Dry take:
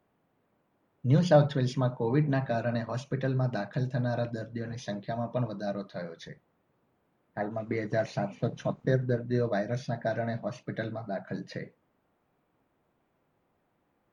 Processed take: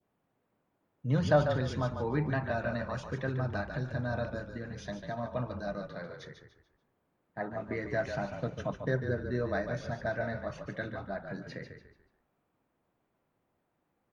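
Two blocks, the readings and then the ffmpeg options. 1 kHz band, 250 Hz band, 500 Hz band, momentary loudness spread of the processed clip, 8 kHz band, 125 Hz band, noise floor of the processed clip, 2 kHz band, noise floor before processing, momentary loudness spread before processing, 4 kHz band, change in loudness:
−2.0 dB, −5.0 dB, −3.5 dB, 11 LU, can't be measured, −4.5 dB, −79 dBFS, +1.5 dB, −74 dBFS, 11 LU, −3.5 dB, −3.5 dB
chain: -filter_complex "[0:a]adynamicequalizer=threshold=0.00447:dfrequency=1400:dqfactor=1:tfrequency=1400:tqfactor=1:attack=5:release=100:ratio=0.375:range=3.5:mode=boostabove:tftype=bell,asplit=5[link_01][link_02][link_03][link_04][link_05];[link_02]adelay=145,afreqshift=-34,volume=-7.5dB[link_06];[link_03]adelay=290,afreqshift=-68,volume=-16.9dB[link_07];[link_04]adelay=435,afreqshift=-102,volume=-26.2dB[link_08];[link_05]adelay=580,afreqshift=-136,volume=-35.6dB[link_09];[link_01][link_06][link_07][link_08][link_09]amix=inputs=5:normalize=0,volume=-5.5dB"

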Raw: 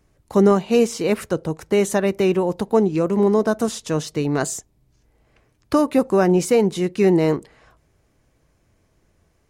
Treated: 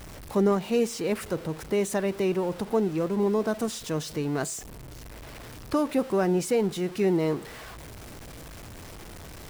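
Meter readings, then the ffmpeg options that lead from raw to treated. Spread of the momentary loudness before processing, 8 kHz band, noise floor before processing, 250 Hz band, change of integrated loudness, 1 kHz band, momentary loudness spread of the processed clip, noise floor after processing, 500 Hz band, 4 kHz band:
8 LU, −6.0 dB, −63 dBFS, −7.5 dB, −7.5 dB, −7.5 dB, 19 LU, −43 dBFS, −7.5 dB, −5.0 dB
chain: -af "aeval=exprs='val(0)+0.5*0.0376*sgn(val(0))':channel_layout=same,equalizer=frequency=6600:width=6.9:gain=-3,volume=-8.5dB"

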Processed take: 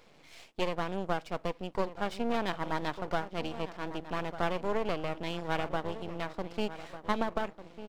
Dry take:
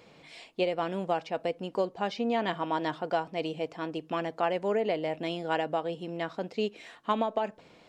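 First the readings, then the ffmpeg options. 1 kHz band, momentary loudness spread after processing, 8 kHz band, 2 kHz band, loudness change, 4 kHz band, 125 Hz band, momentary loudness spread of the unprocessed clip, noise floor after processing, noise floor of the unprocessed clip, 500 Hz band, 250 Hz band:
−3.0 dB, 6 LU, can't be measured, −0.5 dB, −3.5 dB, −2.0 dB, +1.0 dB, 7 LU, −58 dBFS, −57 dBFS, −4.5 dB, −2.5 dB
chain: -filter_complex "[0:a]asplit=2[link_01][link_02];[link_02]adelay=1198,lowpass=frequency=1500:poles=1,volume=-12dB,asplit=2[link_03][link_04];[link_04]adelay=1198,lowpass=frequency=1500:poles=1,volume=0.42,asplit=2[link_05][link_06];[link_06]adelay=1198,lowpass=frequency=1500:poles=1,volume=0.42,asplit=2[link_07][link_08];[link_08]adelay=1198,lowpass=frequency=1500:poles=1,volume=0.42[link_09];[link_01][link_03][link_05][link_07][link_09]amix=inputs=5:normalize=0,aeval=exprs='max(val(0),0)':channel_layout=same"

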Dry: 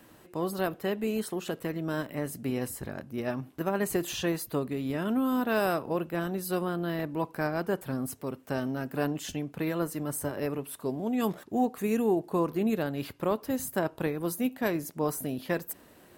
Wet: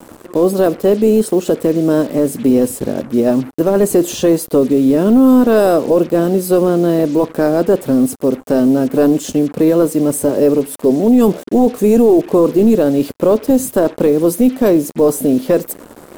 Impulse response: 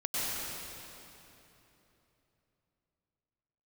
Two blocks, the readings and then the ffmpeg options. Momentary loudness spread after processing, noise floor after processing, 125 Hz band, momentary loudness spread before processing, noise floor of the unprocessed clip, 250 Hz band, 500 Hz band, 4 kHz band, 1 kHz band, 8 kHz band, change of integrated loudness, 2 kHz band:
5 LU, −39 dBFS, +13.0 dB, 7 LU, −56 dBFS, +18.5 dB, +19.5 dB, +9.5 dB, +11.0 dB, +14.5 dB, +18.0 dB, +6.0 dB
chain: -af "equalizer=frequency=250:width_type=o:width=1:gain=10,equalizer=frequency=500:width_type=o:width=1:gain=12,equalizer=frequency=2000:width_type=o:width=1:gain=-7,equalizer=frequency=8000:width_type=o:width=1:gain=6,acrusher=bits=6:mix=0:aa=0.5,apsyclip=14dB,volume=-4.5dB"

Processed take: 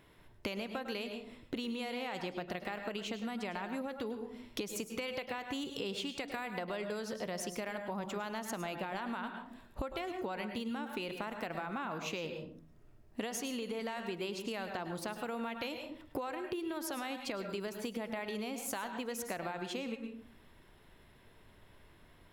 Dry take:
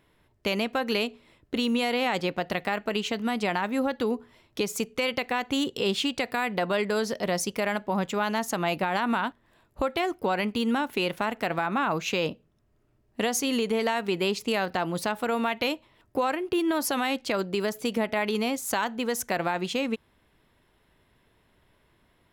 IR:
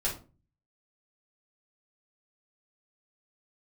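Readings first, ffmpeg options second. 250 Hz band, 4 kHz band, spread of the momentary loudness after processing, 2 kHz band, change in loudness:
−11.5 dB, −12.0 dB, 4 LU, −12.0 dB, −12.0 dB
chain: -filter_complex "[0:a]asplit=2[link_01][link_02];[1:a]atrim=start_sample=2205,adelay=100[link_03];[link_02][link_03]afir=irnorm=-1:irlink=0,volume=-14dB[link_04];[link_01][link_04]amix=inputs=2:normalize=0,acompressor=threshold=-39dB:ratio=8,volume=2.5dB"

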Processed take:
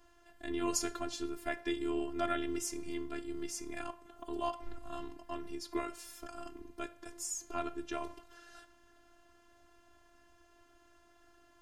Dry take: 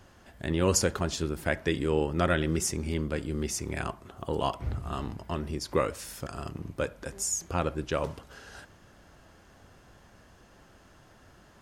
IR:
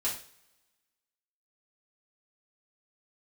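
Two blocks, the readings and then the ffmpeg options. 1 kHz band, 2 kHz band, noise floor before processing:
−6.5 dB, −9.5 dB, −57 dBFS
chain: -filter_complex "[0:a]asplit=2[link_01][link_02];[1:a]atrim=start_sample=2205,highshelf=frequency=3900:gain=-4[link_03];[link_02][link_03]afir=irnorm=-1:irlink=0,volume=-13.5dB[link_04];[link_01][link_04]amix=inputs=2:normalize=0,afftfilt=real='hypot(re,im)*cos(PI*b)':imag='0':win_size=512:overlap=0.75,volume=-6dB"

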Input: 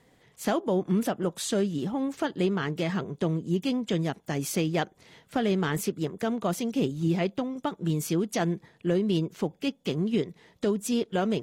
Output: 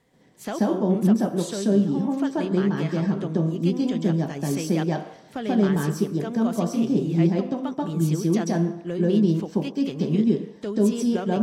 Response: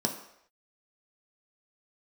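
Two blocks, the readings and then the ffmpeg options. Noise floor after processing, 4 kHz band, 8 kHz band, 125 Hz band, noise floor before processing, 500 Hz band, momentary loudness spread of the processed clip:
−49 dBFS, −2.0 dB, −0.5 dB, +6.0 dB, −63 dBFS, +3.0 dB, 6 LU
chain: -filter_complex "[0:a]asplit=2[link_01][link_02];[1:a]atrim=start_sample=2205,adelay=134[link_03];[link_02][link_03]afir=irnorm=-1:irlink=0,volume=-5dB[link_04];[link_01][link_04]amix=inputs=2:normalize=0,volume=-4.5dB"

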